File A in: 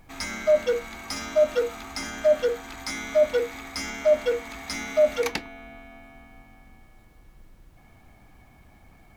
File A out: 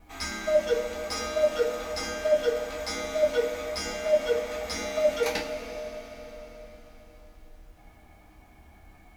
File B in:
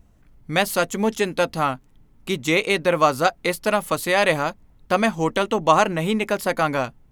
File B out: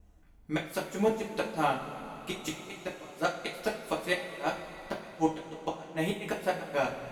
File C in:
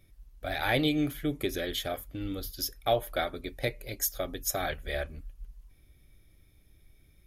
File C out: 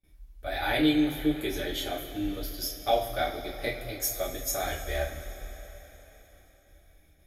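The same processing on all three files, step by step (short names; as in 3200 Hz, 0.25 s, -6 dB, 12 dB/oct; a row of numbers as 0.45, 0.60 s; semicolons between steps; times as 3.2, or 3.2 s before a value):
gate with hold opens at -50 dBFS; dynamic EQ 1200 Hz, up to -4 dB, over -36 dBFS, Q 3.4; flipped gate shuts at -10 dBFS, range -28 dB; two-slope reverb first 0.3 s, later 4.3 s, from -18 dB, DRR -5 dB; normalise peaks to -12 dBFS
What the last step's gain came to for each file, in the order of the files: -6.0, -10.0, -5.0 dB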